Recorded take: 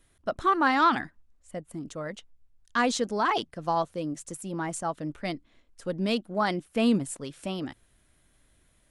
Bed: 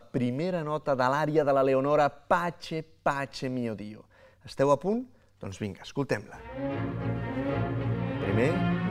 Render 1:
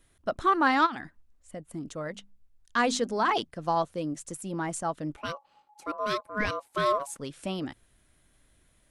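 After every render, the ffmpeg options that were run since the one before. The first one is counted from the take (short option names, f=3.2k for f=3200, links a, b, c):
-filter_complex "[0:a]asplit=3[a][b][c];[a]afade=t=out:st=0.85:d=0.02[d];[b]acompressor=threshold=-35dB:ratio=3:attack=3.2:release=140:knee=1:detection=peak,afade=t=in:st=0.85:d=0.02,afade=t=out:st=1.59:d=0.02[e];[c]afade=t=in:st=1.59:d=0.02[f];[d][e][f]amix=inputs=3:normalize=0,asettb=1/sr,asplit=3[g][h][i];[g]atrim=end=2.094[j];[h]atrim=start=2.09:end=3.39,asetpts=PTS-STARTPTS,afade=t=in:d=0.004:c=qsin,afade=t=out:st=1.296:d=0.004:c=qsin,bandreject=f=50:t=h:w=6,bandreject=f=100:t=h:w=6,bandreject=f=150:t=h:w=6,bandreject=f=200:t=h:w=6,bandreject=f=250:t=h:w=6,bandreject=f=300:t=h:w=6[k];[i]atrim=start=3.386[l];[j][k]acrossfade=d=0.004:c1=hsin:c2=qsin[m];[m][l]acrossfade=d=0.004:c1=qsin:c2=hsin,asplit=3[n][o][p];[n]afade=t=out:st=5.16:d=0.02[q];[o]aeval=exprs='val(0)*sin(2*PI*840*n/s)':c=same,afade=t=in:st=5.16:d=0.02,afade=t=out:st=7.17:d=0.02[r];[p]afade=t=in:st=7.17:d=0.02[s];[q][r][s]amix=inputs=3:normalize=0"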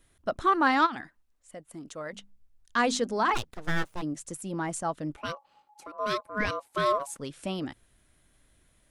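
-filter_complex "[0:a]asettb=1/sr,asplit=3[a][b][c];[a]atrim=end=1.014[d];[b]atrim=start=1.01:end=2.13,asetpts=PTS-STARTPTS,afade=t=in:d=0.004:c=qsin,afade=t=out:st=1.116:d=0.004:c=qsin,lowshelf=f=280:g=-11[e];[c]atrim=start=2.126[f];[d][e]acrossfade=d=0.004:c1=hsin:c2=qsin[g];[g][f]acrossfade=d=0.004:c1=qsin:c2=hsin,asplit=3[h][i][j];[h]afade=t=out:st=3.34:d=0.02[k];[i]aeval=exprs='abs(val(0))':c=same,afade=t=in:st=3.34:d=0.02,afade=t=out:st=4.01:d=0.02[l];[j]afade=t=in:st=4.01:d=0.02[m];[k][l][m]amix=inputs=3:normalize=0,asettb=1/sr,asplit=3[n][o][p];[n]atrim=end=5.344[q];[o]atrim=start=5.34:end=5.99,asetpts=PTS-STARTPTS,afade=t=in:d=0.004:c=qsin,afade=t=out:st=0.646:d=0.004:c=qsin,acompressor=threshold=-38dB:ratio=10:attack=3.2:release=140:knee=1:detection=peak[r];[p]atrim=start=5.986[s];[q][r]acrossfade=d=0.004:c1=hsin:c2=qsin[t];[t][s]acrossfade=d=0.004:c1=qsin:c2=hsin"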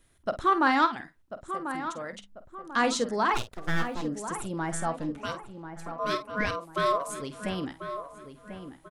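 -filter_complex "[0:a]asplit=2[a][b];[b]adelay=49,volume=-12dB[c];[a][c]amix=inputs=2:normalize=0,asplit=2[d][e];[e]adelay=1042,lowpass=f=1.8k:p=1,volume=-9.5dB,asplit=2[f][g];[g]adelay=1042,lowpass=f=1.8k:p=1,volume=0.41,asplit=2[h][i];[i]adelay=1042,lowpass=f=1.8k:p=1,volume=0.41,asplit=2[j][k];[k]adelay=1042,lowpass=f=1.8k:p=1,volume=0.41[l];[f][h][j][l]amix=inputs=4:normalize=0[m];[d][m]amix=inputs=2:normalize=0"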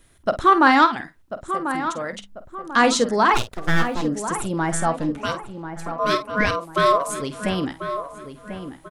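-af "volume=8.5dB,alimiter=limit=-3dB:level=0:latency=1"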